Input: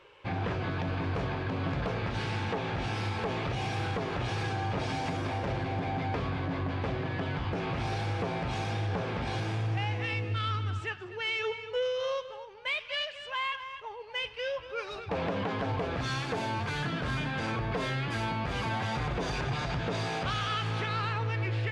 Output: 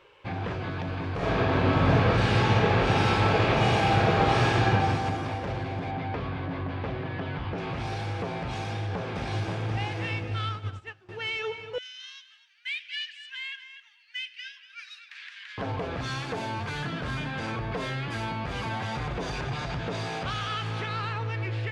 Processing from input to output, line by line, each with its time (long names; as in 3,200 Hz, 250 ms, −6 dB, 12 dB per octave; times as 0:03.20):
0:01.16–0:04.69: thrown reverb, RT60 2.3 s, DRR −10 dB
0:05.91–0:07.58: low-pass filter 4,200 Hz
0:08.62–0:09.68: delay throw 530 ms, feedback 50%, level −4 dB
0:10.49–0:11.09: expander for the loud parts 2.5 to 1, over −40 dBFS
0:11.78–0:15.58: elliptic high-pass filter 1,700 Hz, stop band 70 dB